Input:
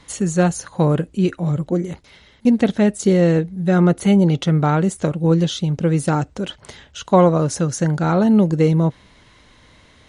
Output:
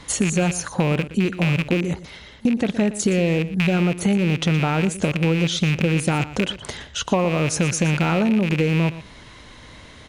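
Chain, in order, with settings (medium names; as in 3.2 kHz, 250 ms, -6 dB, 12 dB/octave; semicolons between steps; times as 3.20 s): rattle on loud lows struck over -22 dBFS, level -14 dBFS; in parallel at +1 dB: peak limiter -11.5 dBFS, peak gain reduction 10 dB; on the sum: compression 6:1, threshold -17 dBFS, peak gain reduction 11.5 dB; delay 118 ms -15 dB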